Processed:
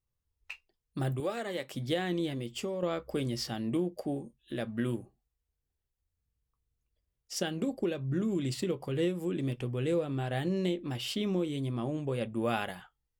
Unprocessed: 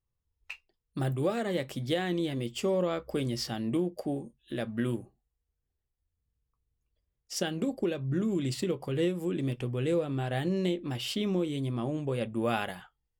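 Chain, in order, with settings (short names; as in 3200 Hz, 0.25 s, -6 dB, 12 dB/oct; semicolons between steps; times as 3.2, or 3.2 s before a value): 1.2–1.74 HPF 490 Hz 6 dB/oct; 2.29–2.83 compressor, threshold -31 dBFS, peak gain reduction 6.5 dB; gain -1.5 dB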